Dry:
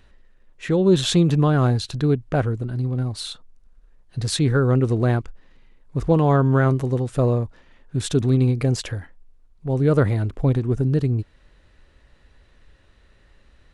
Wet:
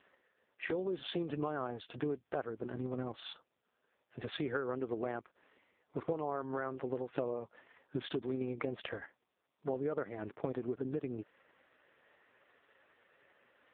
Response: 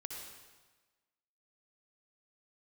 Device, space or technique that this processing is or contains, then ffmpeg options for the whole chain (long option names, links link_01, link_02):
voicemail: -af "highpass=400,lowpass=2900,acompressor=threshold=-33dB:ratio=10,volume=1dB" -ar 8000 -c:a libopencore_amrnb -b:a 4750